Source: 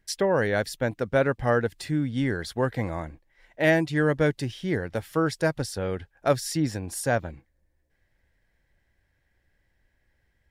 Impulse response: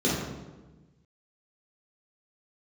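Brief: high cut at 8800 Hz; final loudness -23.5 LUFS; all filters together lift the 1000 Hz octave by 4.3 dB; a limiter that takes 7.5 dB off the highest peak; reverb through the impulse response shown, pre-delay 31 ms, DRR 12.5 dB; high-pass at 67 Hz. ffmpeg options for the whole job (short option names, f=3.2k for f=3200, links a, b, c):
-filter_complex "[0:a]highpass=67,lowpass=8.8k,equalizer=f=1k:t=o:g=6,alimiter=limit=-14dB:level=0:latency=1,asplit=2[a][b];[1:a]atrim=start_sample=2205,adelay=31[c];[b][c]afir=irnorm=-1:irlink=0,volume=-26.5dB[d];[a][d]amix=inputs=2:normalize=0,volume=3dB"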